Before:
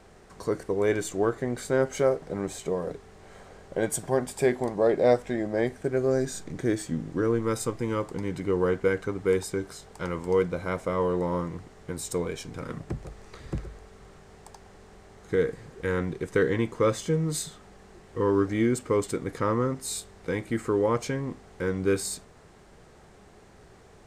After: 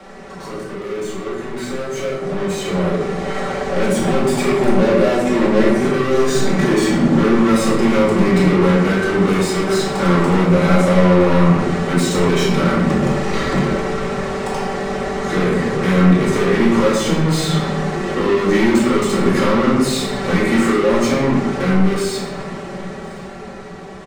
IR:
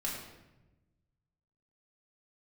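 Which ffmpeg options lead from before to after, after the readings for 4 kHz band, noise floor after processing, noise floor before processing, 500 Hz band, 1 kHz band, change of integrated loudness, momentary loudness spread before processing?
+17.0 dB, −32 dBFS, −53 dBFS, +9.5 dB, +13.5 dB, +11.5 dB, 12 LU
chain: -filter_complex "[0:a]equalizer=frequency=220:width_type=o:width=0.77:gain=2,acrossover=split=170|530|5600[link_01][link_02][link_03][link_04];[link_01]acompressor=threshold=-46dB:ratio=4[link_05];[link_02]acompressor=threshold=-31dB:ratio=4[link_06];[link_03]acompressor=threshold=-39dB:ratio=4[link_07];[link_04]acompressor=threshold=-46dB:ratio=4[link_08];[link_05][link_06][link_07][link_08]amix=inputs=4:normalize=0,lowshelf=frequency=300:gain=10,bandreject=frequency=50:width_type=h:width=6,bandreject=frequency=100:width_type=h:width=6,bandreject=frequency=150:width_type=h:width=6,bandreject=frequency=200:width_type=h:width=6,bandreject=frequency=250:width_type=h:width=6,aecho=1:1:5.2:0.62,asplit=2[link_09][link_10];[link_10]highpass=frequency=720:poles=1,volume=29dB,asoftclip=type=tanh:threshold=-18dB[link_11];[link_09][link_11]amix=inputs=2:normalize=0,lowpass=frequency=2800:poles=1,volume=-6dB,dynaudnorm=framelen=500:gausssize=11:maxgain=13dB,bandreject=frequency=1600:width=24,aecho=1:1:1062:0.0668[link_12];[1:a]atrim=start_sample=2205[link_13];[link_12][link_13]afir=irnorm=-1:irlink=0,volume=-6dB"

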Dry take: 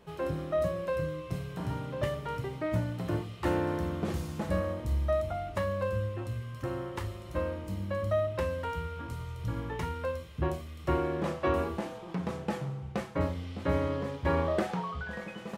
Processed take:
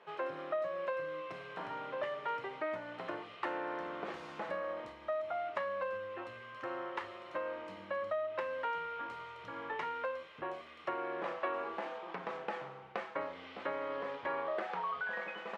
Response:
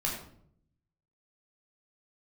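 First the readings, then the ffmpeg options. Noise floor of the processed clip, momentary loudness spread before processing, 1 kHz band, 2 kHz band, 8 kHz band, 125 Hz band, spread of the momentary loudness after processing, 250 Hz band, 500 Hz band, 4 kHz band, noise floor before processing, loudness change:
−52 dBFS, 7 LU, −1.5 dB, 0.0 dB, below −15 dB, −27.0 dB, 7 LU, −14.5 dB, −6.0 dB, −4.5 dB, −45 dBFS, −6.5 dB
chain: -af "tiltshelf=frequency=870:gain=-4,acompressor=threshold=-34dB:ratio=6,highpass=480,lowpass=2200,volume=3dB"

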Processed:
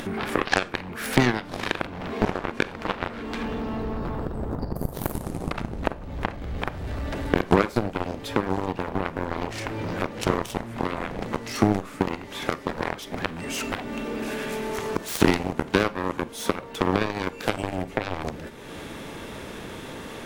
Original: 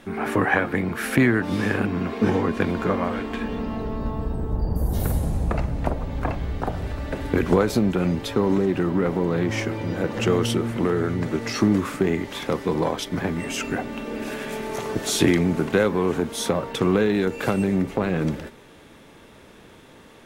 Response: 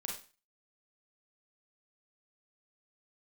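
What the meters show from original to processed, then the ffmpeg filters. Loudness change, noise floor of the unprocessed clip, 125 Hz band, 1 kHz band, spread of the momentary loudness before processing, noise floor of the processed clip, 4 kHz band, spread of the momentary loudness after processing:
−4.5 dB, −48 dBFS, −5.5 dB, +0.5 dB, 9 LU, −40 dBFS, −1.0 dB, 10 LU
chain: -filter_complex "[0:a]aeval=exprs='0.708*(cos(1*acos(clip(val(0)/0.708,-1,1)))-cos(1*PI/2))+0.126*(cos(7*acos(clip(val(0)/0.708,-1,1)))-cos(7*PI/2))':channel_layout=same,acompressor=mode=upward:threshold=-18dB:ratio=2.5,asplit=2[link_01][link_02];[1:a]atrim=start_sample=2205[link_03];[link_02][link_03]afir=irnorm=-1:irlink=0,volume=-13dB[link_04];[link_01][link_04]amix=inputs=2:normalize=0,volume=-1dB"

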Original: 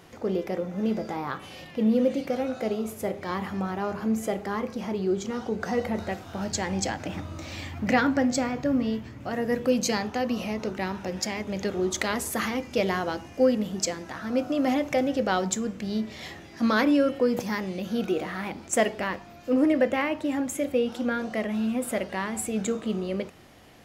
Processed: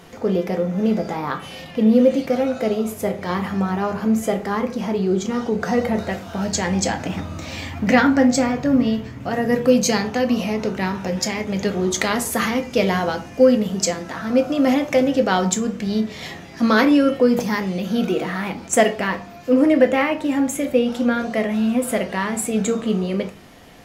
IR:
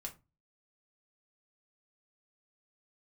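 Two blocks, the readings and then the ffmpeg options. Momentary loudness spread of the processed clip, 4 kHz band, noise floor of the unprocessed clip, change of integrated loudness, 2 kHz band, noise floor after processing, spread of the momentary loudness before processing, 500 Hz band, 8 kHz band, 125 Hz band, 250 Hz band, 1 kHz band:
10 LU, +7.0 dB, −46 dBFS, +7.5 dB, +6.5 dB, −38 dBFS, 9 LU, +7.5 dB, +7.0 dB, +8.5 dB, +8.0 dB, +6.5 dB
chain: -filter_complex "[0:a]asplit=2[link_01][link_02];[1:a]atrim=start_sample=2205,asetrate=37926,aresample=44100[link_03];[link_02][link_03]afir=irnorm=-1:irlink=0,volume=5dB[link_04];[link_01][link_04]amix=inputs=2:normalize=0"

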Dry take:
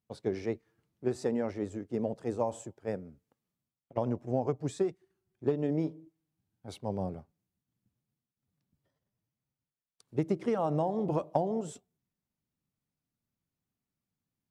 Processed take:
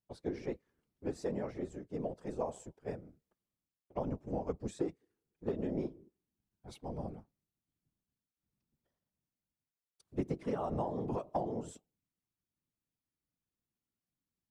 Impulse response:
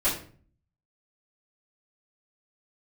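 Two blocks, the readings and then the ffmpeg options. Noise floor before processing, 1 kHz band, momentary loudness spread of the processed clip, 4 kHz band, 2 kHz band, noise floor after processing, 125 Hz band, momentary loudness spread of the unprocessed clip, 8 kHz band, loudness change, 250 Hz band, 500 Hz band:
below −85 dBFS, −5.5 dB, 10 LU, −6.0 dB, −6.0 dB, below −85 dBFS, −6.5 dB, 11 LU, −6.0 dB, −6.0 dB, −6.0 dB, −6.5 dB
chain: -af "afftfilt=real='hypot(re,im)*cos(2*PI*random(0))':imag='hypot(re,im)*sin(2*PI*random(1))':win_size=512:overlap=0.75"

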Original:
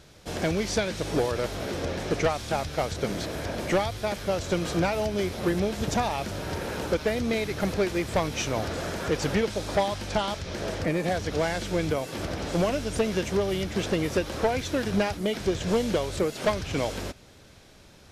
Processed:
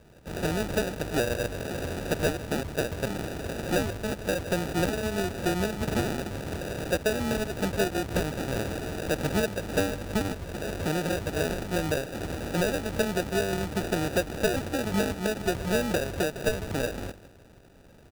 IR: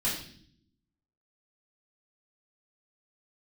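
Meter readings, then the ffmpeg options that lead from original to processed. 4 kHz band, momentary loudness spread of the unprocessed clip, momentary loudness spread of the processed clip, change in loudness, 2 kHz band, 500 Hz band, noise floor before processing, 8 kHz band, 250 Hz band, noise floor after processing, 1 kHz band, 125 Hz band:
−2.5 dB, 5 LU, 6 LU, −1.5 dB, +0.5 dB, −2.0 dB, −52 dBFS, 0.0 dB, −1.0 dB, −53 dBFS, −3.5 dB, −0.5 dB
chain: -filter_complex "[0:a]asplit=2[link_01][link_02];[link_02]adelay=157.4,volume=-17dB,highshelf=frequency=4000:gain=-3.54[link_03];[link_01][link_03]amix=inputs=2:normalize=0,acrusher=samples=41:mix=1:aa=0.000001,volume=-1.5dB"

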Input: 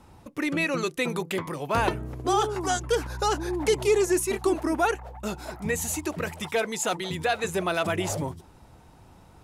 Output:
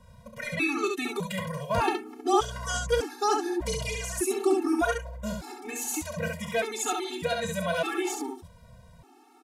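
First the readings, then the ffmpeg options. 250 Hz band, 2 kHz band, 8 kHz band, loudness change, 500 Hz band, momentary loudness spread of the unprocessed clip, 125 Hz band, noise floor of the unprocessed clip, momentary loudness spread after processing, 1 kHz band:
−1.5 dB, −2.0 dB, −1.5 dB, −2.0 dB, −3.0 dB, 8 LU, −3.5 dB, −53 dBFS, 10 LU, −1.5 dB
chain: -filter_complex "[0:a]asplit=2[link_01][link_02];[link_02]aecho=0:1:32|68:0.282|0.631[link_03];[link_01][link_03]amix=inputs=2:normalize=0,afftfilt=real='re*gt(sin(2*PI*0.83*pts/sr)*(1-2*mod(floor(b*sr/1024/230),2)),0)':imag='im*gt(sin(2*PI*0.83*pts/sr)*(1-2*mod(floor(b*sr/1024/230),2)),0)':win_size=1024:overlap=0.75"

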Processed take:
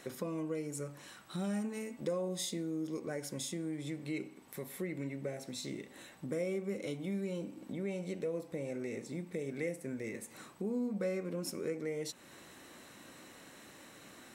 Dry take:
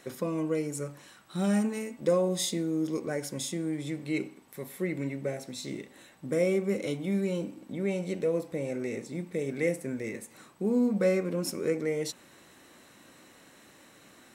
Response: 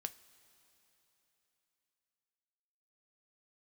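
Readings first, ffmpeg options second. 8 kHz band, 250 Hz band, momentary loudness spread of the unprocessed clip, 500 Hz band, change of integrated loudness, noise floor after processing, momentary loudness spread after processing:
−6.0 dB, −8.0 dB, 12 LU, −8.5 dB, −8.5 dB, −56 dBFS, 17 LU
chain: -af "acompressor=threshold=-43dB:ratio=2,volume=1dB"

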